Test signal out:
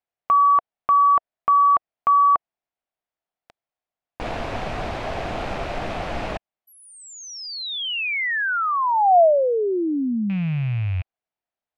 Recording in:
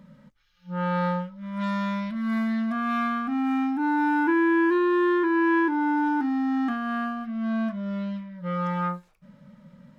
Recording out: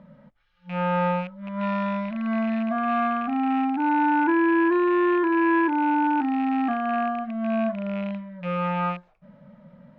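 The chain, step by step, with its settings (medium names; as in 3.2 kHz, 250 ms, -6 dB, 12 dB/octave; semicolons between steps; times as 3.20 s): rattle on loud lows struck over -36 dBFS, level -27 dBFS; low-pass 2.8 kHz 12 dB/octave; peaking EQ 690 Hz +11 dB 0.56 oct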